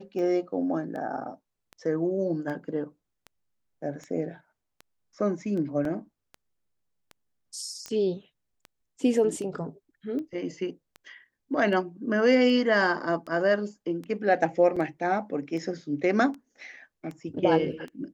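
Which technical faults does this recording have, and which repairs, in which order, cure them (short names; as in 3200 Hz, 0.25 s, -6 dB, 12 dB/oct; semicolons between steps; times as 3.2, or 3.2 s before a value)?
tick 78 rpm -27 dBFS
5.85 gap 2.6 ms
7.86 pop -19 dBFS
14.76–14.77 gap 5.3 ms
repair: de-click; interpolate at 5.85, 2.6 ms; interpolate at 14.76, 5.3 ms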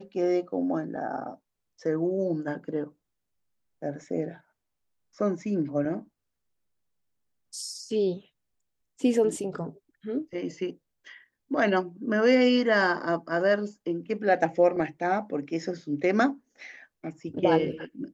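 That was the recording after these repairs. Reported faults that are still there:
none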